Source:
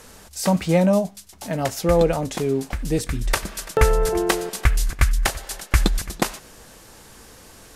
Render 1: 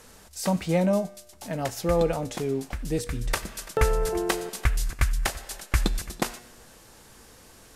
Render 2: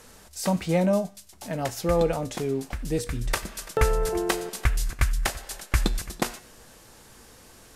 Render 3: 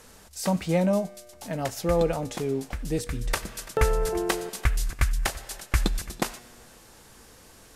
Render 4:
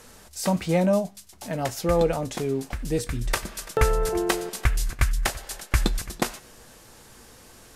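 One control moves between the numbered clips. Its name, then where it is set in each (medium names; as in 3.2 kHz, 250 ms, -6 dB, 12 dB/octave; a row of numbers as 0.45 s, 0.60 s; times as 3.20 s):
feedback comb, decay: 1 s, 0.46 s, 2.2 s, 0.17 s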